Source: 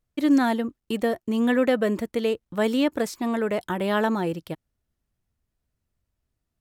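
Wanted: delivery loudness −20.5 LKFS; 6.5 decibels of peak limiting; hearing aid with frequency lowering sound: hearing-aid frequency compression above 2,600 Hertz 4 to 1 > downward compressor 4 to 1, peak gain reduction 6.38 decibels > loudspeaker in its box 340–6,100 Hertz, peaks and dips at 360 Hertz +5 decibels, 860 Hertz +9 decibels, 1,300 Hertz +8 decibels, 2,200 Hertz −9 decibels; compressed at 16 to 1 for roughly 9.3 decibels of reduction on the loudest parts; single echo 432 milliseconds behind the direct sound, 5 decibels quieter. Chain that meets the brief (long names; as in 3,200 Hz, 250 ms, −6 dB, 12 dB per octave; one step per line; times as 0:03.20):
downward compressor 16 to 1, threshold −24 dBFS
brickwall limiter −22.5 dBFS
single-tap delay 432 ms −5 dB
hearing-aid frequency compression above 2,600 Hz 4 to 1
downward compressor 4 to 1, threshold −31 dBFS
loudspeaker in its box 340–6,100 Hz, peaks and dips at 360 Hz +5 dB, 860 Hz +9 dB, 1,300 Hz +8 dB, 2,200 Hz −9 dB
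level +15 dB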